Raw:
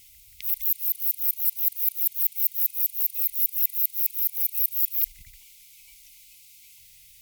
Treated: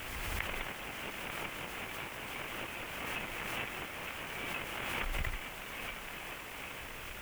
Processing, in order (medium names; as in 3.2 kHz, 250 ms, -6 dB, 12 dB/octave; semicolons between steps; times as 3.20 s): CVSD coder 16 kbps; added noise white -68 dBFS; swell ahead of each attack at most 22 dB/s; trim +14 dB